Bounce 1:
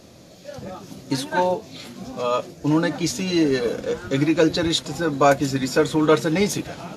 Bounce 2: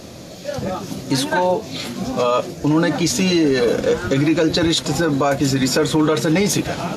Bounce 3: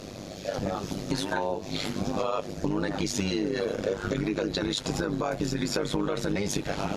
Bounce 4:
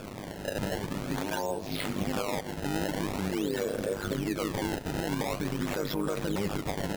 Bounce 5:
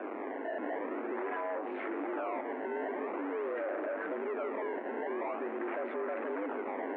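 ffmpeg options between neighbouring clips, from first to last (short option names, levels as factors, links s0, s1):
-filter_complex "[0:a]asplit=2[s0][s1];[s1]acompressor=threshold=0.0562:ratio=6,volume=1[s2];[s0][s2]amix=inputs=2:normalize=0,alimiter=limit=0.224:level=0:latency=1:release=25,volume=1.68"
-af "highshelf=f=11000:g=-10,acompressor=threshold=0.0794:ratio=6,tremolo=f=100:d=0.889"
-af "alimiter=limit=0.0944:level=0:latency=1:release=66,acrusher=samples=22:mix=1:aa=0.000001:lfo=1:lforange=35.2:lforate=0.46,aecho=1:1:205:0.0794"
-af "asoftclip=type=hard:threshold=0.0126,highpass=f=170:t=q:w=0.5412,highpass=f=170:t=q:w=1.307,lowpass=f=2100:t=q:w=0.5176,lowpass=f=2100:t=q:w=0.7071,lowpass=f=2100:t=q:w=1.932,afreqshift=98,volume=1.78"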